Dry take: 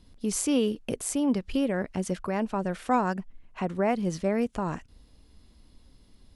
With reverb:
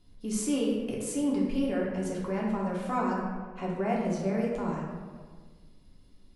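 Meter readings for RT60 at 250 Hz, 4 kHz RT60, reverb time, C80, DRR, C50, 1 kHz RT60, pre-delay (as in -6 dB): 1.7 s, 0.90 s, 1.6 s, 3.0 dB, -4.0 dB, 1.0 dB, 1.5 s, 3 ms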